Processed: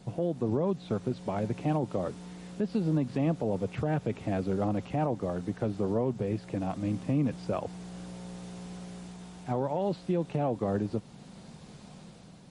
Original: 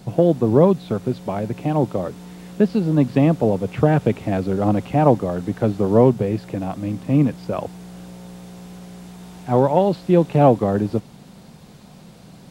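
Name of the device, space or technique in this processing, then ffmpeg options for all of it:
low-bitrate web radio: -af "dynaudnorm=framelen=170:gausssize=7:maxgain=5dB,alimiter=limit=-11dB:level=0:latency=1:release=132,volume=-8.5dB" -ar 32000 -c:a libmp3lame -b:a 40k

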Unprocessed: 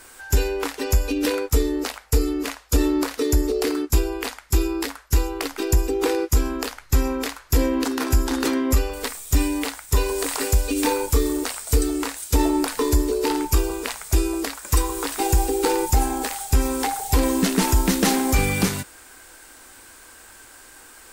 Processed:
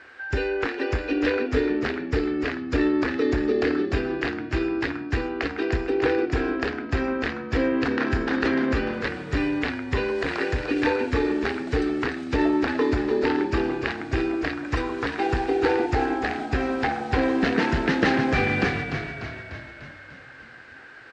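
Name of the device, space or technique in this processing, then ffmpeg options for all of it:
frequency-shifting delay pedal into a guitar cabinet: -filter_complex "[0:a]asplit=9[link_01][link_02][link_03][link_04][link_05][link_06][link_07][link_08][link_09];[link_02]adelay=297,afreqshift=-39,volume=-7dB[link_10];[link_03]adelay=594,afreqshift=-78,volume=-11.6dB[link_11];[link_04]adelay=891,afreqshift=-117,volume=-16.2dB[link_12];[link_05]adelay=1188,afreqshift=-156,volume=-20.7dB[link_13];[link_06]adelay=1485,afreqshift=-195,volume=-25.3dB[link_14];[link_07]adelay=1782,afreqshift=-234,volume=-29.9dB[link_15];[link_08]adelay=2079,afreqshift=-273,volume=-34.5dB[link_16];[link_09]adelay=2376,afreqshift=-312,volume=-39.1dB[link_17];[link_01][link_10][link_11][link_12][link_13][link_14][link_15][link_16][link_17]amix=inputs=9:normalize=0,highpass=100,equalizer=frequency=190:width_type=q:width=4:gain=-9,equalizer=frequency=970:width_type=q:width=4:gain=-6,equalizer=frequency=1700:width_type=q:width=4:gain=8,equalizer=frequency=3400:width_type=q:width=4:gain=-5,lowpass=frequency=3700:width=0.5412,lowpass=frequency=3700:width=1.3066"

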